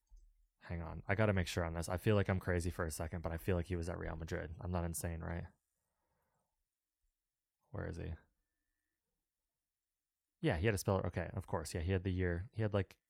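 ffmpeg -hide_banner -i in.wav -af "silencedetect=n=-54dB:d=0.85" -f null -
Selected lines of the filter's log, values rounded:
silence_start: 5.47
silence_end: 7.74 | silence_duration: 2.27
silence_start: 8.20
silence_end: 10.43 | silence_duration: 2.23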